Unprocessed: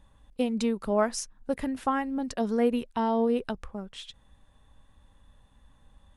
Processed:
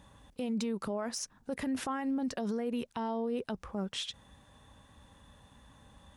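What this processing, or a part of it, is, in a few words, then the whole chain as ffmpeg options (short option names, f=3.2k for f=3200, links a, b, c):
broadcast voice chain: -af "highpass=84,deesser=0.75,acompressor=threshold=-32dB:ratio=4,equalizer=f=5.8k:t=o:w=0.53:g=3.5,alimiter=level_in=9.5dB:limit=-24dB:level=0:latency=1:release=29,volume=-9.5dB,volume=6.5dB"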